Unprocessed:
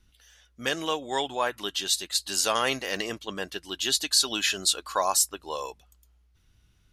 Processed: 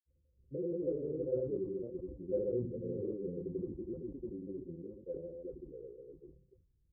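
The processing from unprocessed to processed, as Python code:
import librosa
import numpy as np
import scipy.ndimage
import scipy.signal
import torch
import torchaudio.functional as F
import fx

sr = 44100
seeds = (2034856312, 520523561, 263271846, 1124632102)

y = fx.reverse_delay(x, sr, ms=285, wet_db=-4)
y = fx.doppler_pass(y, sr, speed_mps=38, closest_m=26.0, pass_at_s=1.67)
y = fx.rider(y, sr, range_db=4, speed_s=2.0)
y = scipy.signal.sosfilt(scipy.signal.cheby1(6, 9, 530.0, 'lowpass', fs=sr, output='sos'), y)
y = fx.granulator(y, sr, seeds[0], grain_ms=100.0, per_s=20.0, spray_ms=100.0, spread_st=0)
y = fx.sustainer(y, sr, db_per_s=88.0)
y = y * librosa.db_to_amplitude(7.0)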